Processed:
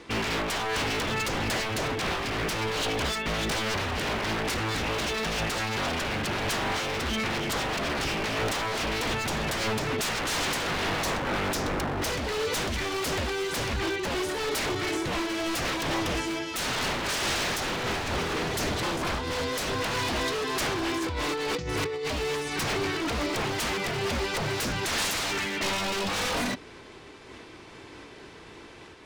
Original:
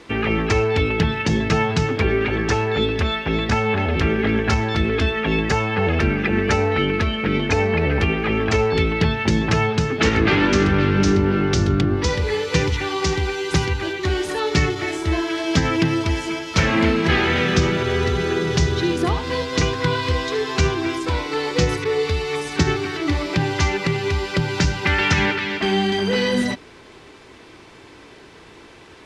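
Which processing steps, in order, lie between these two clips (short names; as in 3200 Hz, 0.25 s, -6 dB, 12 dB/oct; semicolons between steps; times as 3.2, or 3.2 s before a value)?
21.02–22.1 negative-ratio compressor -27 dBFS, ratio -1; wavefolder -22 dBFS; noise-modulated level, depth 50%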